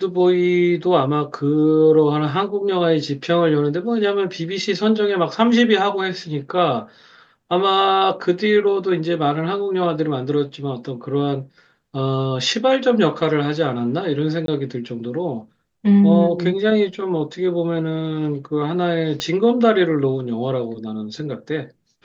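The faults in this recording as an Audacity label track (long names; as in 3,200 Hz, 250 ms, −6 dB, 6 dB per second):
14.460000	14.480000	drop-out 22 ms
19.200000	19.200000	click −10 dBFS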